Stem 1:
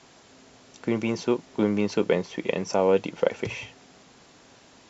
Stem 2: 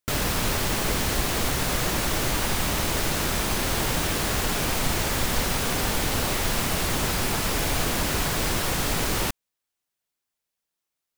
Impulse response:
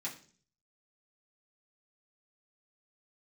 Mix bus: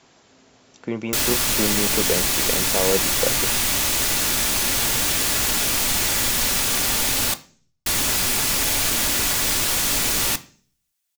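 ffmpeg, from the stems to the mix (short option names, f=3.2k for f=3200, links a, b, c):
-filter_complex "[0:a]volume=-1.5dB[a];[1:a]highshelf=f=2.2k:g=11.5,adelay=1050,volume=-4.5dB,asplit=3[b][c][d];[b]atrim=end=7.34,asetpts=PTS-STARTPTS,afade=t=out:st=7.336:d=0.004:c=hsin[e];[c]atrim=start=7.34:end=7.86,asetpts=PTS-STARTPTS,volume=0[f];[d]atrim=start=7.86,asetpts=PTS-STARTPTS,afade=t=in:d=0.004:c=hsin[g];[e][f][g]concat=n=3:v=0:a=1,asplit=2[h][i];[i]volume=-5.5dB[j];[2:a]atrim=start_sample=2205[k];[j][k]afir=irnorm=-1:irlink=0[l];[a][h][l]amix=inputs=3:normalize=0"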